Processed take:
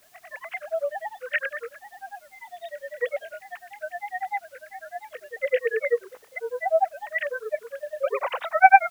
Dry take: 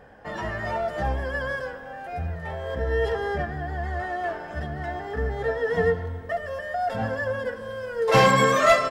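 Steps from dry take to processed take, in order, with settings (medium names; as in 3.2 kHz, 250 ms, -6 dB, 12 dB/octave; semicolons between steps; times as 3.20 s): formants replaced by sine waves; hum notches 50/100/150/200/250/300/350/400/450 Hz; granulator 100 ms, grains 10 per s, pitch spread up and down by 3 st; word length cut 10-bit, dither triangular; trim +1 dB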